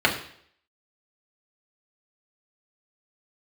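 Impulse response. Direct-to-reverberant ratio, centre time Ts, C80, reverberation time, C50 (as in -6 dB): -2.0 dB, 19 ms, 12.0 dB, 0.60 s, 9.5 dB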